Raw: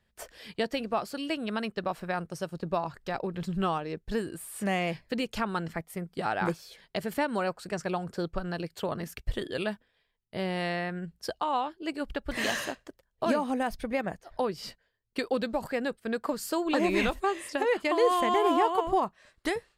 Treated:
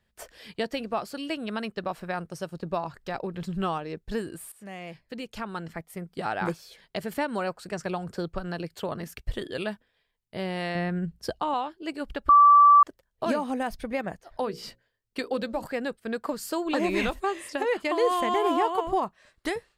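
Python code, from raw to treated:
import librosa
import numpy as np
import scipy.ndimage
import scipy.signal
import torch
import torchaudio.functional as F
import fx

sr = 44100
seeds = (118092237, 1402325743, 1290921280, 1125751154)

y = fx.band_squash(x, sr, depth_pct=40, at=(7.84, 8.78))
y = fx.low_shelf(y, sr, hz=300.0, db=10.5, at=(10.75, 11.54))
y = fx.hum_notches(y, sr, base_hz=60, count=9, at=(14.3, 15.66))
y = fx.edit(y, sr, fx.fade_in_from(start_s=4.52, length_s=1.71, floor_db=-16.5),
    fx.bleep(start_s=12.29, length_s=0.54, hz=1160.0, db=-11.5), tone=tone)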